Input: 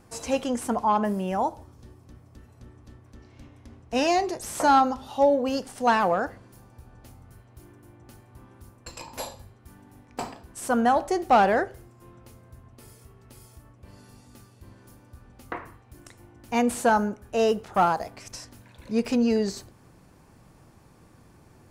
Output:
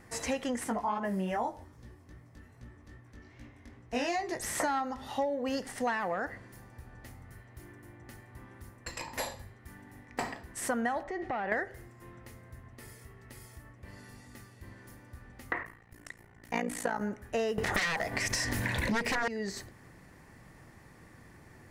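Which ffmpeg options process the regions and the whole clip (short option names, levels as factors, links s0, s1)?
-filter_complex "[0:a]asettb=1/sr,asplit=3[s0][s1][s2];[s0]atrim=end=0.644[s3];[s1]atrim=start=0.64:end=4.32,asetpts=PTS-STARTPTS,afade=t=in:d=0.004:c=qsin,afade=t=out:st=3.676:d=0.004:c=qsin,bandreject=f=1900:w=20,flanger=delay=17:depth=4.1:speed=2.5[s4];[s2]atrim=start=4.316[s5];[s3][s4]acrossfade=d=0.004:c1=hsin:c2=qsin[s6];[s6][s5]acrossfade=d=0.004:c1=qsin:c2=hsin,asettb=1/sr,asplit=3[s7][s8][s9];[s7]atrim=end=11.034[s10];[s8]atrim=start=11.03:end=11.52,asetpts=PTS-STARTPTS,afade=t=in:d=0.004:c=qsin,afade=t=out:st=0.486:d=0.004:c=qsin,lowpass=3000,acompressor=threshold=0.0282:ratio=8:attack=3.2:release=140:knee=1:detection=peak[s11];[s9]atrim=start=11.516[s12];[s10][s11]acrossfade=d=0.004:c1=hsin:c2=qsin[s13];[s13][s12]acrossfade=d=0.004:c1=qsin:c2=hsin,asettb=1/sr,asplit=3[s14][s15][s16];[s14]atrim=end=15.634[s17];[s15]atrim=start=15.63:end=17.01,asetpts=PTS-STARTPTS,afade=t=in:d=0.004:c=qsin,afade=t=out:st=1.376:d=0.004:c=qsin,tremolo=f=57:d=0.947,bandreject=f=50:t=h:w=6,bandreject=f=100:t=h:w=6,bandreject=f=150:t=h:w=6,bandreject=f=200:t=h:w=6,bandreject=f=250:t=h:w=6,bandreject=f=300:t=h:w=6,bandreject=f=350:t=h:w=6[s18];[s16]atrim=start=17.006[s19];[s17][s18]acrossfade=d=0.004:c1=hsin:c2=qsin[s20];[s20][s19]acrossfade=d=0.004:c1=qsin:c2=hsin,asettb=1/sr,asplit=3[s21][s22][s23];[s21]atrim=end=17.584[s24];[s22]atrim=start=17.58:end=19.28,asetpts=PTS-STARTPTS,afade=t=in:d=0.004:c=qsin,afade=t=out:st=1.696:d=0.004:c=qsin,bandreject=f=1300:w=11,acompressor=mode=upward:threshold=0.0178:ratio=2.5:attack=3.2:release=140:knee=2.83:detection=peak,aeval=exprs='0.299*sin(PI/2*6.31*val(0)/0.299)':c=same[s25];[s23]atrim=start=19.276[s26];[s24][s25]acrossfade=d=0.004:c1=hsin:c2=qsin[s27];[s27][s26]acrossfade=d=0.004:c1=qsin:c2=hsin,equalizer=f=1900:w=4.4:g=15,acompressor=threshold=0.0447:ratio=16,volume=0.891"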